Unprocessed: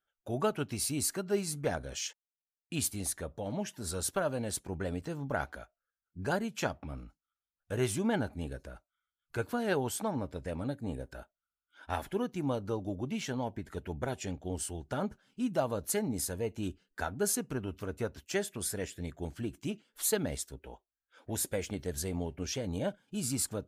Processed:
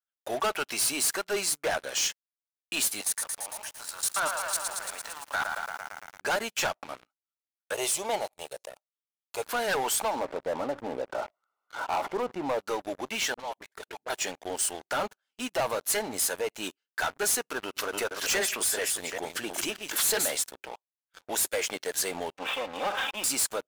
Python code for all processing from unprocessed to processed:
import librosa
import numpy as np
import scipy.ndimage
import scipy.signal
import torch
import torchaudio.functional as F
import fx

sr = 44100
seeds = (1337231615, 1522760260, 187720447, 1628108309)

y = fx.chain(x, sr, fx.highpass_res(hz=970.0, q=1.8),
    fx.level_steps(step_db=18),
    fx.echo_crushed(ms=113, feedback_pct=80, bits=10, wet_db=-8), at=(3.01, 6.21))
y = fx.chain(y, sr, fx.peak_eq(hz=7800.0, db=2.0, octaves=0.42),
    fx.fixed_phaser(hz=650.0, stages=4), at=(7.74, 9.43))
y = fx.chain(y, sr, fx.savgol(points=65),
    fx.env_flatten(amount_pct=50), at=(10.19, 12.59))
y = fx.chain(y, sr, fx.low_shelf(hz=220.0, db=-10.5),
    fx.level_steps(step_db=11),
    fx.dispersion(late='highs', ms=54.0, hz=380.0), at=(13.34, 14.1))
y = fx.chain(y, sr, fx.reverse_delay(ms=195, wet_db=-7.0),
    fx.pre_swell(db_per_s=86.0), at=(17.62, 20.37))
y = fx.chain(y, sr, fx.lower_of_two(delay_ms=3.8),
    fx.cheby_ripple(hz=3700.0, ripple_db=6),
    fx.sustainer(db_per_s=50.0), at=(22.34, 23.24))
y = scipy.signal.sosfilt(scipy.signal.butter(2, 740.0, 'highpass', fs=sr, output='sos'), y)
y = fx.leveller(y, sr, passes=5)
y = y * librosa.db_to_amplitude(-3.5)